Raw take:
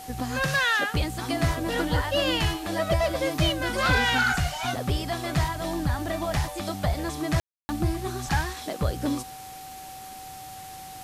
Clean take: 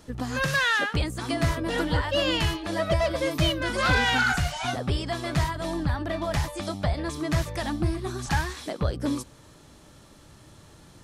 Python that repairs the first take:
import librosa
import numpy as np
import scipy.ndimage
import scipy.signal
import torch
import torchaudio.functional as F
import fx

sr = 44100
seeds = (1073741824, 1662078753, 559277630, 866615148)

y = fx.notch(x, sr, hz=760.0, q=30.0)
y = fx.fix_ambience(y, sr, seeds[0], print_start_s=9.35, print_end_s=9.85, start_s=7.4, end_s=7.69)
y = fx.noise_reduce(y, sr, print_start_s=9.35, print_end_s=9.85, reduce_db=10.0)